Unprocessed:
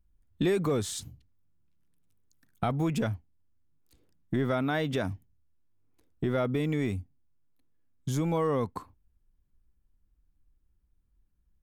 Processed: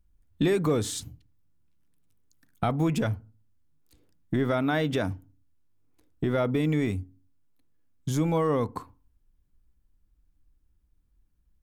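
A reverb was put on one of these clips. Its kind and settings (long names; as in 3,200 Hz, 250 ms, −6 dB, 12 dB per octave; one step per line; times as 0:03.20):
feedback delay network reverb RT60 0.36 s, low-frequency decay 1.45×, high-frequency decay 0.35×, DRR 17.5 dB
level +2.5 dB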